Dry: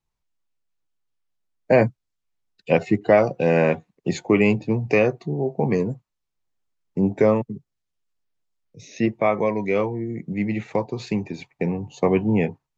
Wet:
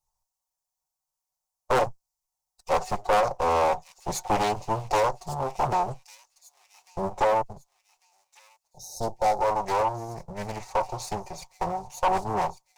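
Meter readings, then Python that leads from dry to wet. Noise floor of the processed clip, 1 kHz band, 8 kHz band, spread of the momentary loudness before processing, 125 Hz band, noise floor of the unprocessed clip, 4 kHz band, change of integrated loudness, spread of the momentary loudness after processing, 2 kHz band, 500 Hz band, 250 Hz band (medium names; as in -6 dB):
under -85 dBFS, +5.5 dB, no reading, 10 LU, -11.0 dB, -80 dBFS, +2.5 dB, -5.0 dB, 13 LU, -7.0 dB, -7.0 dB, -16.0 dB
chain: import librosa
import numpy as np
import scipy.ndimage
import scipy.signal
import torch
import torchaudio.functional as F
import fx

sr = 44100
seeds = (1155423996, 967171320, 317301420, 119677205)

p1 = fx.lower_of_two(x, sr, delay_ms=5.4)
p2 = np.clip(10.0 ** (16.5 / 20.0) * p1, -1.0, 1.0) / 10.0 ** (16.5 / 20.0)
p3 = p1 + (p2 * librosa.db_to_amplitude(-4.5))
p4 = fx.curve_eq(p3, sr, hz=(110.0, 250.0, 860.0, 1600.0, 3200.0, 5800.0), db=(0, -20, 11, -9, -8, 9))
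p5 = fx.spec_repair(p4, sr, seeds[0], start_s=8.74, length_s=0.68, low_hz=910.0, high_hz=3700.0, source='before')
p6 = 10.0 ** (-11.5 / 20.0) * np.tanh(p5 / 10.0 ** (-11.5 / 20.0))
p7 = p6 + fx.echo_wet_highpass(p6, sr, ms=1148, feedback_pct=36, hz=3600.0, wet_db=-12.0, dry=0)
p8 = fx.doppler_dist(p7, sr, depth_ms=0.58)
y = p8 * librosa.db_to_amplitude(-4.5)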